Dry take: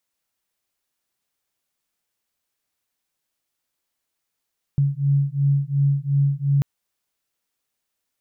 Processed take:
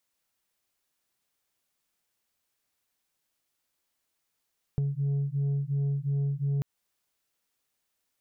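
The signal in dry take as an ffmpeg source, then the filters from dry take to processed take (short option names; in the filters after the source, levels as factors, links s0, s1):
-f lavfi -i "aevalsrc='0.1*(sin(2*PI*139*t)+sin(2*PI*141.8*t))':d=1.84:s=44100"
-af "asoftclip=type=tanh:threshold=0.141,acompressor=threshold=0.0447:ratio=6"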